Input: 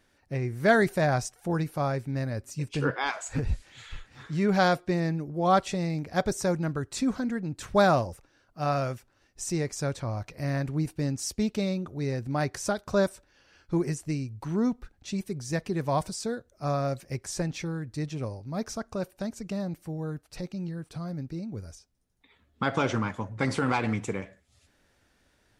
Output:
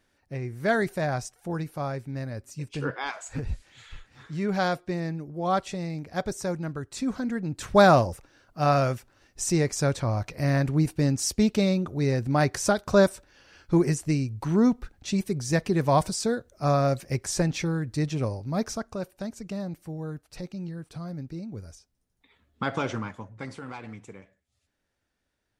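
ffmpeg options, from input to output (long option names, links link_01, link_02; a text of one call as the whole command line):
ffmpeg -i in.wav -af "volume=5.5dB,afade=type=in:start_time=6.96:duration=1.03:silence=0.375837,afade=type=out:start_time=18.5:duration=0.47:silence=0.473151,afade=type=out:start_time=22.63:duration=0.94:silence=0.251189" out.wav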